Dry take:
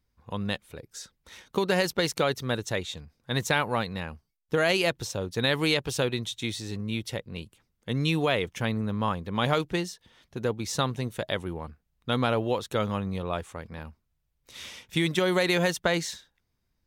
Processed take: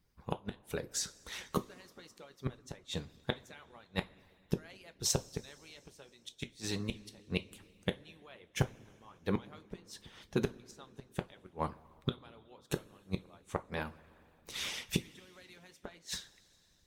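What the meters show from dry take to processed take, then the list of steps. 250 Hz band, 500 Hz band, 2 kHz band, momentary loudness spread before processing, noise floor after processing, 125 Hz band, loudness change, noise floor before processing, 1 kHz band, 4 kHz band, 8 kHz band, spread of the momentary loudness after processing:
−11.0 dB, −14.0 dB, −15.5 dB, 17 LU, −68 dBFS, −10.0 dB, −11.5 dB, −76 dBFS, −14.0 dB, −11.5 dB, −3.5 dB, 18 LU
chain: gate with flip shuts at −23 dBFS, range −33 dB
coupled-rooms reverb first 0.28 s, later 3.2 s, from −19 dB, DRR 6.5 dB
harmonic and percussive parts rebalanced harmonic −13 dB
level +6.5 dB

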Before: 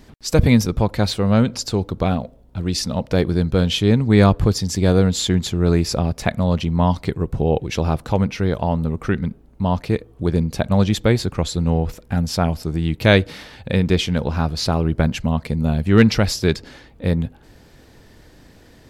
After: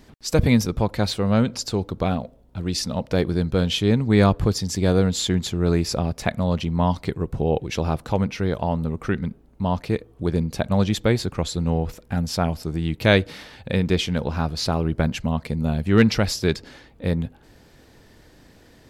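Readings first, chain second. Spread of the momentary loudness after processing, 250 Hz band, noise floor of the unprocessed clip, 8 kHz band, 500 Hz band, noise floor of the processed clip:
8 LU, −3.5 dB, −49 dBFS, −2.5 dB, −2.5 dB, −52 dBFS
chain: low-shelf EQ 130 Hz −3 dB
level −2.5 dB

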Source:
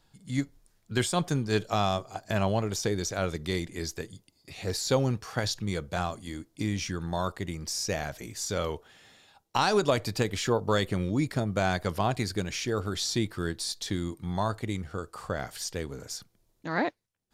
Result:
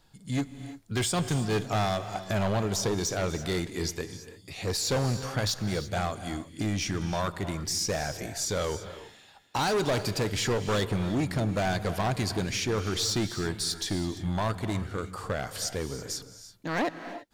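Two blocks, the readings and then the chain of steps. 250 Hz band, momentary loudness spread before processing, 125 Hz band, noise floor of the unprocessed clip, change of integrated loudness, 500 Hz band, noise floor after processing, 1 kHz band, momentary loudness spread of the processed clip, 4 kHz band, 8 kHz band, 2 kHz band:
+0.5 dB, 10 LU, +1.0 dB, −71 dBFS, +0.5 dB, −0.5 dB, −54 dBFS, −0.5 dB, 9 LU, +2.0 dB, +3.0 dB, 0.0 dB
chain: hard clipping −26.5 dBFS, distortion −8 dB
reverb whose tail is shaped and stops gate 360 ms rising, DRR 11 dB
level +3 dB

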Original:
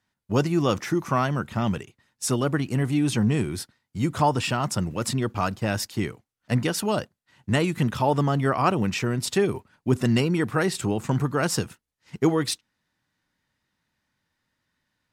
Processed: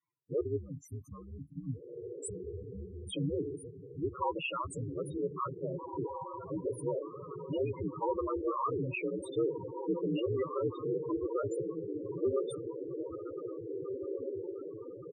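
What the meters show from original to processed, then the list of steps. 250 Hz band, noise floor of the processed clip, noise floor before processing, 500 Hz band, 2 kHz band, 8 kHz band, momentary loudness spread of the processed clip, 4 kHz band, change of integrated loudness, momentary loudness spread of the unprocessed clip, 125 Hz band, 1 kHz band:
−13.0 dB, −50 dBFS, −83 dBFS, −6.0 dB, −16.5 dB, −18.5 dB, 11 LU, −17.5 dB, −12.0 dB, 7 LU, −16.0 dB, −12.0 dB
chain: one scale factor per block 5 bits
gain on a spectral selection 0:00.56–0:03.09, 220–4,100 Hz −22 dB
ring modulation 65 Hz
high-pass filter 110 Hz 24 dB per octave
phaser with its sweep stopped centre 1,100 Hz, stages 8
on a send: feedback delay with all-pass diffusion 1,888 ms, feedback 56%, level −6.5 dB
on the sum: gain into a clipping stage and back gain 25.5 dB
slap from a distant wall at 140 metres, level −21 dB
spectral peaks only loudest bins 8
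parametric band 6,500 Hz +9.5 dB 1.1 octaves

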